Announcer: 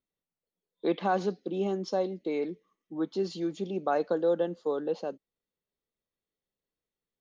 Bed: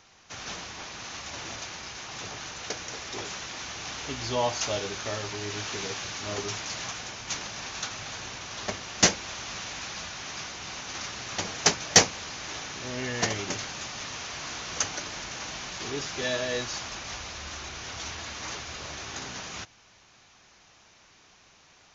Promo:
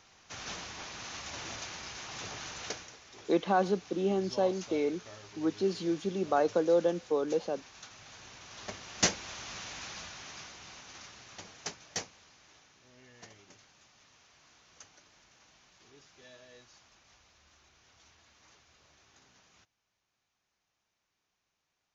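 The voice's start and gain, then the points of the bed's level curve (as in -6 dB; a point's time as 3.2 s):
2.45 s, +0.5 dB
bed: 2.69 s -3.5 dB
2.98 s -16.5 dB
7.76 s -16.5 dB
9.12 s -6 dB
9.9 s -6 dB
12.82 s -25.5 dB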